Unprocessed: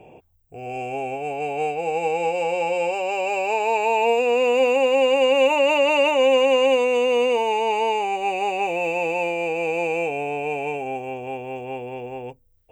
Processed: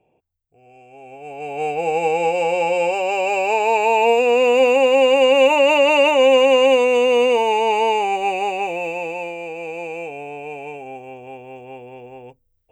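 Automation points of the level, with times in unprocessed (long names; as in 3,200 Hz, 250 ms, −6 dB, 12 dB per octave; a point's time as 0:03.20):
0:00.87 −17.5 dB
0:01.26 −7 dB
0:01.78 +4 dB
0:08.16 +4 dB
0:09.43 −5.5 dB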